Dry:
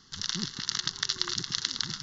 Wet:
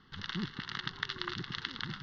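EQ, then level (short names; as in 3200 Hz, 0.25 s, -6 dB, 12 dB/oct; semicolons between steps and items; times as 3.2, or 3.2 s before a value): LPF 3000 Hz 24 dB/oct; 0.0 dB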